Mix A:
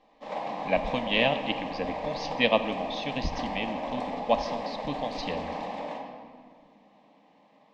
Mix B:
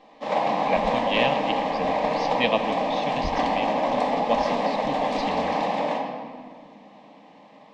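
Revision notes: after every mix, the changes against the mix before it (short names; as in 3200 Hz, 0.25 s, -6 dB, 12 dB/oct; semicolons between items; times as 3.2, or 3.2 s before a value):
background +10.5 dB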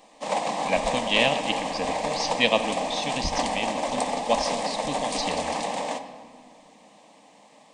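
background: send -11.0 dB; master: remove air absorption 230 m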